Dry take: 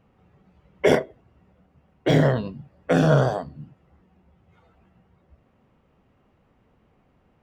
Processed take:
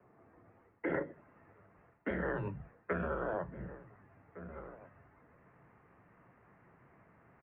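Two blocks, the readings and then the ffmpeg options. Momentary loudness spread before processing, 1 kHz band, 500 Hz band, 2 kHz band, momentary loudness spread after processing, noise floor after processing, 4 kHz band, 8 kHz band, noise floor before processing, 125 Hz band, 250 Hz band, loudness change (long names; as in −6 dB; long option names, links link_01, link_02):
20 LU, −13.5 dB, −16.0 dB, −11.0 dB, 19 LU, −67 dBFS, below −30 dB, below −35 dB, −64 dBFS, −21.0 dB, −16.5 dB, −18.0 dB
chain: -filter_complex "[0:a]bandreject=frequency=60:width_type=h:width=6,bandreject=frequency=120:width_type=h:width=6,bandreject=frequency=180:width_type=h:width=6,bandreject=frequency=240:width_type=h:width=6,asplit=2[link_01][link_02];[link_02]adelay=1458,volume=-28dB,highshelf=frequency=4000:gain=-32.8[link_03];[link_01][link_03]amix=inputs=2:normalize=0,areverse,acompressor=threshold=-27dB:ratio=10,areverse,alimiter=level_in=1.5dB:limit=-24dB:level=0:latency=1:release=222,volume=-1.5dB,acrossover=split=330|1300[link_04][link_05][link_06];[link_06]dynaudnorm=framelen=190:gausssize=9:maxgain=8dB[link_07];[link_04][link_05][link_07]amix=inputs=3:normalize=0,asubboost=boost=3.5:cutoff=200,highpass=frequency=240:width_type=q:width=0.5412,highpass=frequency=240:width_type=q:width=1.307,lowpass=frequency=2100:width_type=q:width=0.5176,lowpass=frequency=2100:width_type=q:width=0.7071,lowpass=frequency=2100:width_type=q:width=1.932,afreqshift=-87,volume=1.5dB"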